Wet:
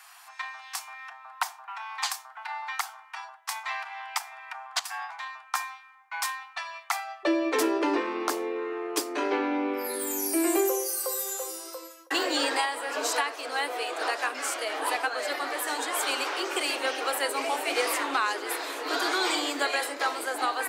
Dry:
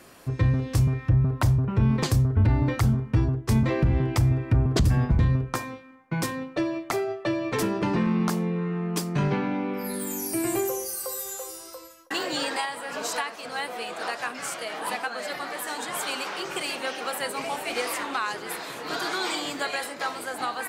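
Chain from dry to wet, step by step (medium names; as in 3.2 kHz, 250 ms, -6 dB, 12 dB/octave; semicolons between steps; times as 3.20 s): steep high-pass 730 Hz 96 dB/octave, from 7.23 s 270 Hz; trim +2 dB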